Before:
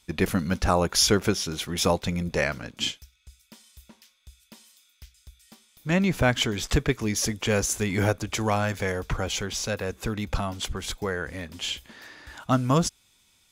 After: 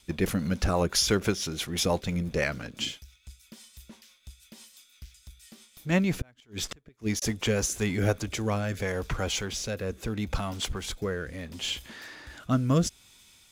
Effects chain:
mu-law and A-law mismatch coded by mu
0:06.11–0:07.22: gate with flip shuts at −15 dBFS, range −34 dB
rotating-speaker cabinet horn 6 Hz, later 0.75 Hz, at 0:07.47
level −1 dB

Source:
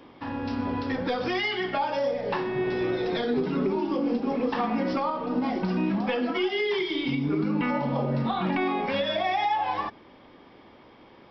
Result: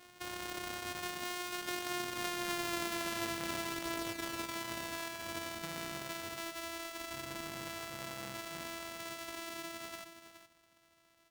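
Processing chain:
samples sorted by size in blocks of 128 samples
source passing by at 0:02.72, 12 m/s, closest 6 metres
tilt shelving filter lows −9 dB, about 1,100 Hz
single-tap delay 419 ms −12 dB
downward compressor 3 to 1, threshold −43 dBFS, peak gain reduction 16.5 dB
high-shelf EQ 2,200 Hz −8 dB
level +10 dB

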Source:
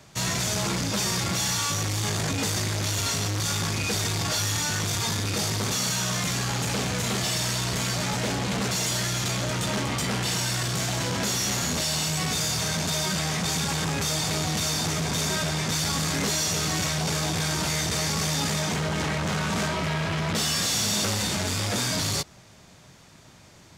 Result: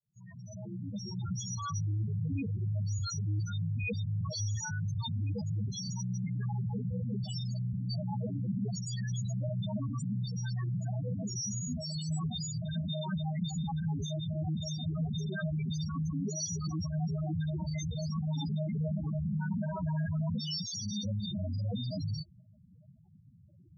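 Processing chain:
fade in at the beginning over 1.55 s
spectral peaks only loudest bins 4
level −2 dB

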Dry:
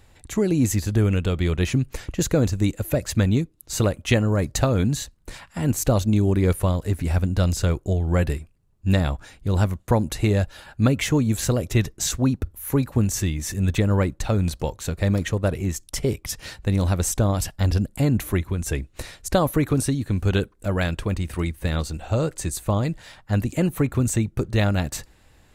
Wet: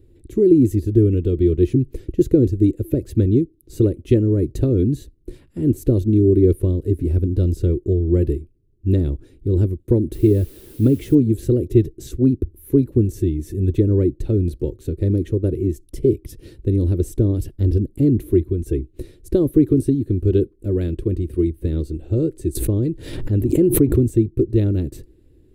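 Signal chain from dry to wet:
0:10.13–0:11.15: bit-depth reduction 6 bits, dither triangular
drawn EQ curve 130 Hz 0 dB, 190 Hz −6 dB, 360 Hz +11 dB, 750 Hz −24 dB, 1,200 Hz −24 dB, 3,600 Hz −17 dB, 6,900 Hz −22 dB, 9,900 Hz −13 dB
0:22.55–0:24.08: background raised ahead of every attack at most 64 dB per second
level +3 dB

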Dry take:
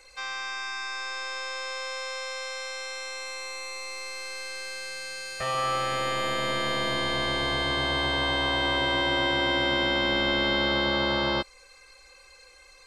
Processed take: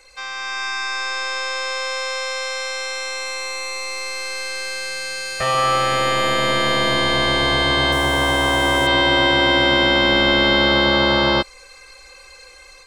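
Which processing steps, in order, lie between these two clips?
0:07.92–0:08.87: running median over 9 samples
automatic gain control gain up to 6 dB
level +3.5 dB

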